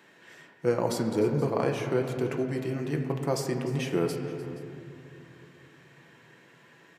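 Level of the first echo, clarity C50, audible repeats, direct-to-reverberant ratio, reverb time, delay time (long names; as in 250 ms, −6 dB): −16.5 dB, 5.5 dB, 2, 2.0 dB, 2.8 s, 300 ms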